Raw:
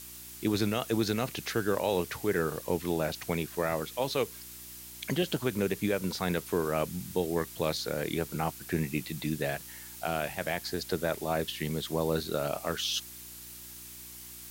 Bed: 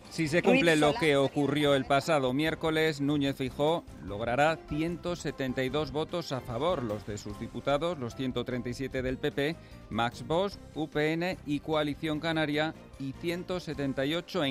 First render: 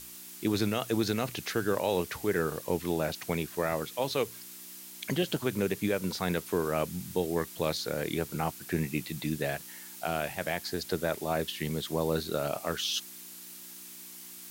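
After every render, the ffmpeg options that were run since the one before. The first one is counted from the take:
-af "bandreject=f=60:t=h:w=4,bandreject=f=120:t=h:w=4"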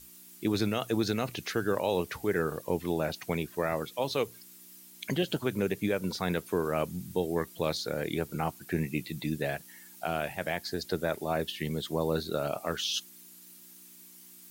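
-af "afftdn=nr=9:nf=-47"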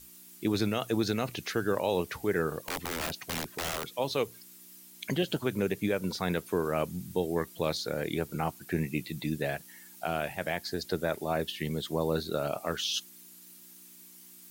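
-filter_complex "[0:a]asettb=1/sr,asplit=3[s0][s1][s2];[s0]atrim=end=2.604[s3];[s1]atrim=start=2.6:end=3.84,asetpts=PTS-STARTPTS,afade=t=in:d=0.004:c=qsin,afade=t=out:st=1.236:d=0.004:c=qsin,aeval=exprs='(mod(22.4*val(0)+1,2)-1)/22.4':c=same[s4];[s2]atrim=start=3.836[s5];[s3][s4]acrossfade=d=0.004:c1=hsin:c2=qsin[s6];[s6][s5]acrossfade=d=0.004:c1=qsin:c2=hsin"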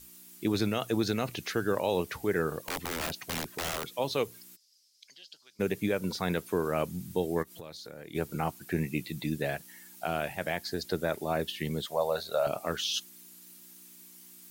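-filter_complex "[0:a]asplit=3[s0][s1][s2];[s0]afade=t=out:st=4.55:d=0.02[s3];[s1]bandpass=f=5000:t=q:w=5.5,afade=t=in:st=4.55:d=0.02,afade=t=out:st=5.59:d=0.02[s4];[s2]afade=t=in:st=5.59:d=0.02[s5];[s3][s4][s5]amix=inputs=3:normalize=0,asplit=3[s6][s7][s8];[s6]afade=t=out:st=7.42:d=0.02[s9];[s7]acompressor=threshold=0.00708:ratio=4:attack=3.2:release=140:knee=1:detection=peak,afade=t=in:st=7.42:d=0.02,afade=t=out:st=8.14:d=0.02[s10];[s8]afade=t=in:st=8.14:d=0.02[s11];[s9][s10][s11]amix=inputs=3:normalize=0,asettb=1/sr,asplit=3[s12][s13][s14];[s12]atrim=end=11.864[s15];[s13]atrim=start=11.86:end=12.47,asetpts=PTS-STARTPTS,afade=t=in:d=0.004:c=qsin,afade=t=out:st=0.606:d=0.004:c=qsin,lowshelf=f=440:t=q:w=3:g=-11[s16];[s14]atrim=start=12.466[s17];[s15][s16]acrossfade=d=0.004:c1=hsin:c2=qsin[s18];[s18][s17]acrossfade=d=0.004:c1=qsin:c2=hsin"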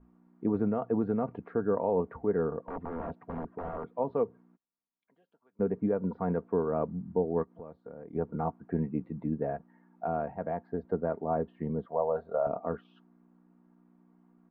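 -af "lowpass=f=1100:w=0.5412,lowpass=f=1100:w=1.3066,aecho=1:1:4.3:0.43"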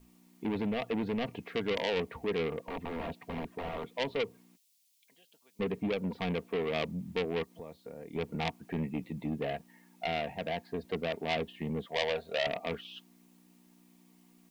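-af "asoftclip=type=tanh:threshold=0.0447,aexciter=amount=6.6:drive=9.4:freq=2200"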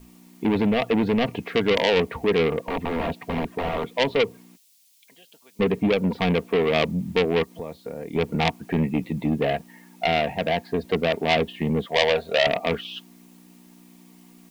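-af "volume=3.76"

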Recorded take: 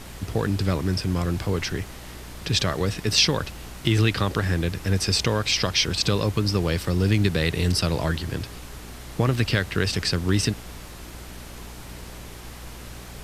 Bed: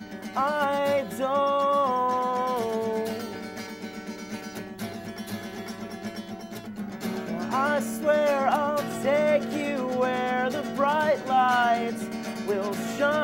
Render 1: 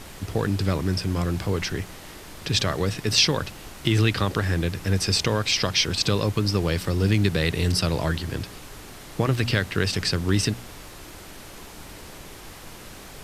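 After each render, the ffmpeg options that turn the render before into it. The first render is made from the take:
-af "bandreject=f=60:t=h:w=4,bandreject=f=120:t=h:w=4,bandreject=f=180:t=h:w=4,bandreject=f=240:t=h:w=4"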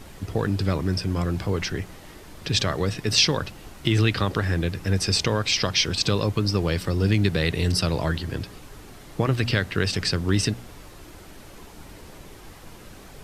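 -af "afftdn=nr=6:nf=-42"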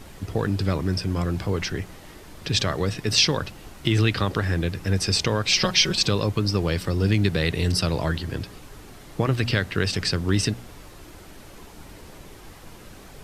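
-filter_complex "[0:a]asettb=1/sr,asplit=3[s0][s1][s2];[s0]atrim=end=5.484[s3];[s1]atrim=start=5.48:end=6.06,asetpts=PTS-STARTPTS,afade=t=in:d=0.004:c=qsin,afade=t=out:st=0.576:d=0.004:c=qsin,aecho=1:1:5.4:0.93,atrim=end_sample=25578[s4];[s2]atrim=start=6.056[s5];[s3][s4]acrossfade=d=0.004:c1=hsin:c2=qsin[s6];[s6][s5]acrossfade=d=0.004:c1=qsin:c2=hsin"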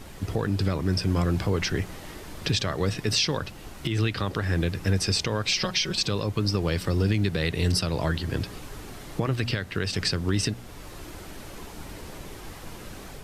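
-af "dynaudnorm=f=180:g=3:m=1.5,alimiter=limit=0.2:level=0:latency=1:release=481"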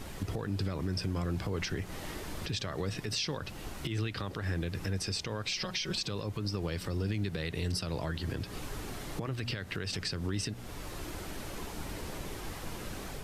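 -af "acompressor=threshold=0.0282:ratio=2.5,alimiter=limit=0.0631:level=0:latency=1:release=124"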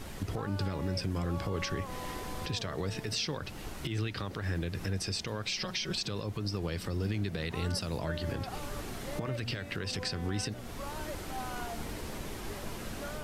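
-filter_complex "[1:a]volume=0.1[s0];[0:a][s0]amix=inputs=2:normalize=0"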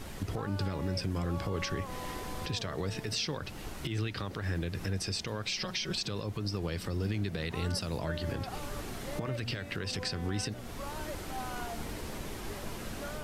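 -af anull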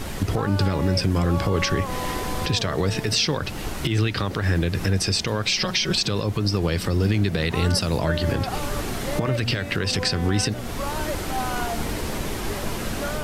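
-af "volume=3.98"

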